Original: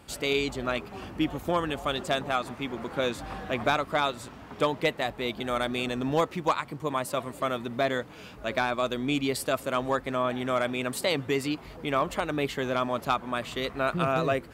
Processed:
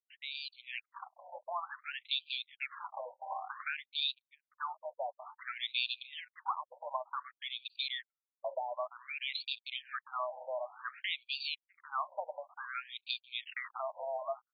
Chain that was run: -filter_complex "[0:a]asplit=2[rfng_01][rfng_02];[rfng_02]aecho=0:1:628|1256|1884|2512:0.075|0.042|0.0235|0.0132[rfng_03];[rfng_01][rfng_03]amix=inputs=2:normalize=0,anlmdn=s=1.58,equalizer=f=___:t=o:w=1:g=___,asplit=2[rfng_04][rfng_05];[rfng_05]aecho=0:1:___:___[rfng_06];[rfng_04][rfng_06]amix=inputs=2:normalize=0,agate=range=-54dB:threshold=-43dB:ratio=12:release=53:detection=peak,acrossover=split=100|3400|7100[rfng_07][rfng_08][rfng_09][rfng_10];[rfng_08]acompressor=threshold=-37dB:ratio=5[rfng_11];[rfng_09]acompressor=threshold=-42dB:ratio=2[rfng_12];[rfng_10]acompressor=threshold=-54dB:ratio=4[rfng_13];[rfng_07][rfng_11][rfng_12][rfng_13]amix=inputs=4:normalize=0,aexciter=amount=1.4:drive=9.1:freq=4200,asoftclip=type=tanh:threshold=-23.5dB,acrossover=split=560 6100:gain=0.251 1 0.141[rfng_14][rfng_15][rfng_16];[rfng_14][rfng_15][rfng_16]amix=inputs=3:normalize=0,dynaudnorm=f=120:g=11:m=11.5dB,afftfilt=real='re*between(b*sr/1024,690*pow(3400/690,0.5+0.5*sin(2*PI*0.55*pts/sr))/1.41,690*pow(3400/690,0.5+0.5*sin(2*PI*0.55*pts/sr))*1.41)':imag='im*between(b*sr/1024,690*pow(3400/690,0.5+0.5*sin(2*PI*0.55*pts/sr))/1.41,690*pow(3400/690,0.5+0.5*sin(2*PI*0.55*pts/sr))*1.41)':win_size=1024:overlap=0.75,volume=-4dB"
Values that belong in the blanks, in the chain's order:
89, -5, 645, 0.0708